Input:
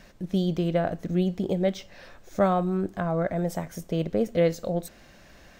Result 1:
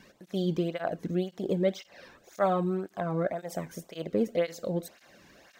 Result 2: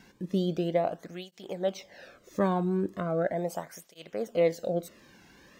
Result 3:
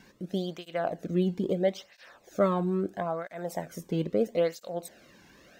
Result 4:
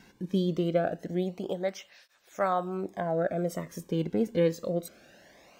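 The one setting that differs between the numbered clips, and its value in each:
cancelling through-zero flanger, nulls at: 1.9 Hz, 0.38 Hz, 0.76 Hz, 0.24 Hz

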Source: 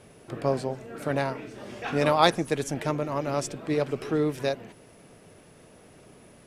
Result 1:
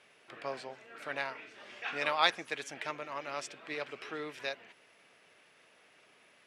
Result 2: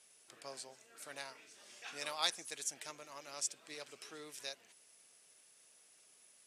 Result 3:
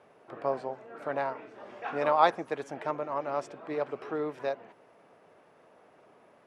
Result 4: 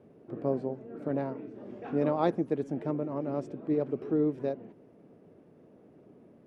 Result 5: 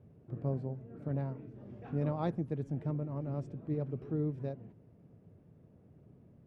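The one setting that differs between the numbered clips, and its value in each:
band-pass filter, frequency: 2.4 kHz, 7.7 kHz, 930 Hz, 290 Hz, 110 Hz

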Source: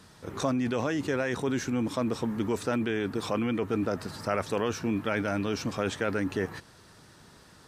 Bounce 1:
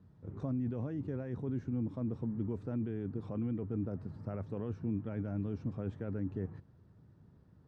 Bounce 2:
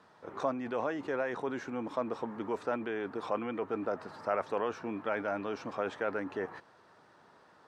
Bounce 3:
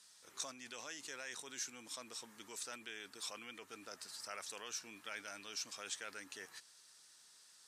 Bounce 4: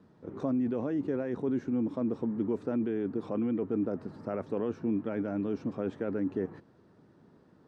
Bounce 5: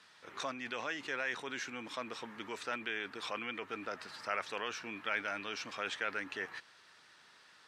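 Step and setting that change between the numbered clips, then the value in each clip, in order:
band-pass filter, frequency: 100 Hz, 820 Hz, 7.8 kHz, 280 Hz, 2.4 kHz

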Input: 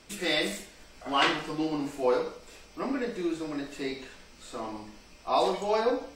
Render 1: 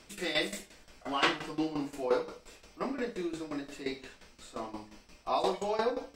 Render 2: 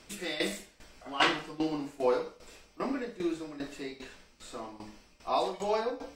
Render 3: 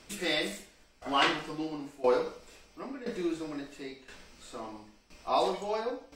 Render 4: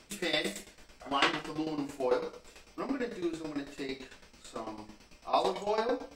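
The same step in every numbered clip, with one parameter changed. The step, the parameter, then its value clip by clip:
tremolo, rate: 5.7 Hz, 2.5 Hz, 0.98 Hz, 9 Hz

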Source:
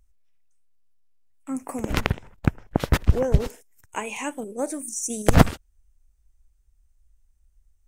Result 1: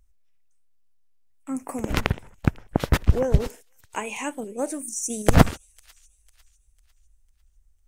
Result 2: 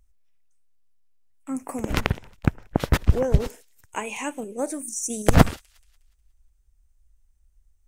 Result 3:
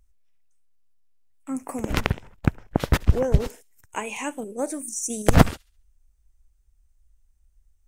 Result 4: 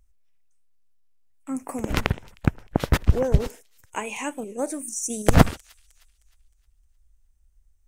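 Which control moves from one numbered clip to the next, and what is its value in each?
feedback echo behind a high-pass, time: 500 ms, 181 ms, 69 ms, 310 ms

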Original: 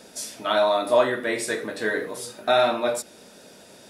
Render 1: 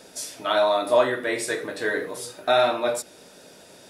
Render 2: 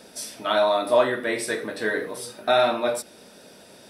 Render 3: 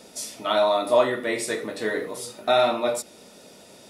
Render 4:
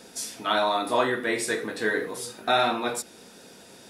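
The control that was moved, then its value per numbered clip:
band-stop, frequency: 220 Hz, 6.9 kHz, 1.6 kHz, 600 Hz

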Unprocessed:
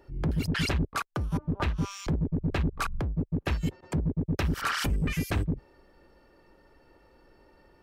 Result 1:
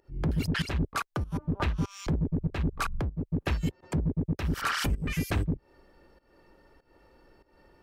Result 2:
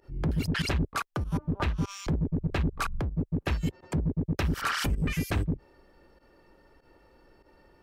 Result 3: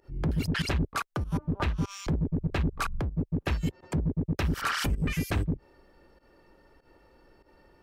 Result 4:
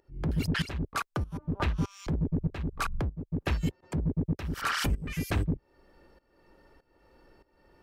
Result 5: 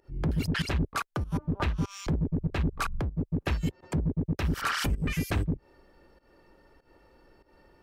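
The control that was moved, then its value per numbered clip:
volume shaper, release: 250 ms, 66 ms, 99 ms, 521 ms, 160 ms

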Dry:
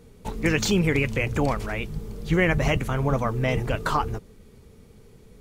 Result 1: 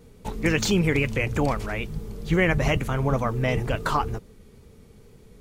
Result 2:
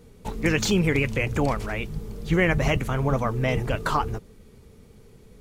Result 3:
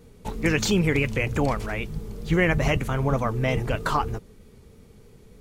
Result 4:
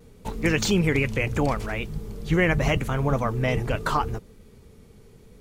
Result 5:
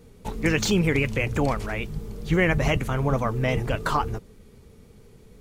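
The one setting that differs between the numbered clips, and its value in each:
vibrato, rate: 2.2 Hz, 13 Hz, 3.2 Hz, 0.76 Hz, 6 Hz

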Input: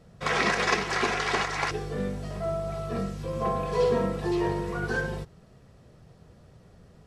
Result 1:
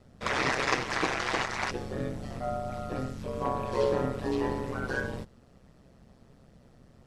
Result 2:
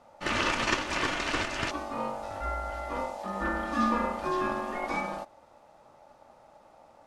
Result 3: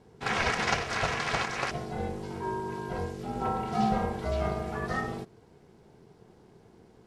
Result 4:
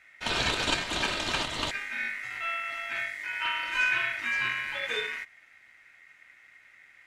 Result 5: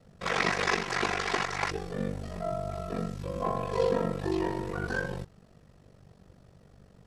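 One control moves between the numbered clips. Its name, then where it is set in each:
ring modulator, frequency: 65 Hz, 720 Hz, 280 Hz, 2 kHz, 24 Hz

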